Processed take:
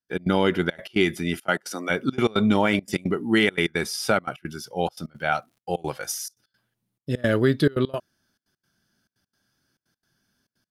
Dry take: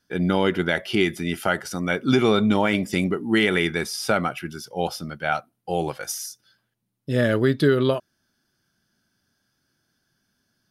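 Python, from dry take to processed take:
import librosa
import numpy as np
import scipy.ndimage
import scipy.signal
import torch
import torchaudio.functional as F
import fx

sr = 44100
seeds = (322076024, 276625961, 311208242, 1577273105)

y = fx.highpass(x, sr, hz=fx.line((1.38, 100.0), (1.89, 340.0)), slope=24, at=(1.38, 1.89), fade=0.02)
y = fx.dmg_crackle(y, sr, seeds[0], per_s=110.0, level_db=-52.0, at=(4.87, 6.11), fade=0.02)
y = fx.step_gate(y, sr, bpm=172, pattern='.x.xxxxx', floor_db=-24.0, edge_ms=4.5)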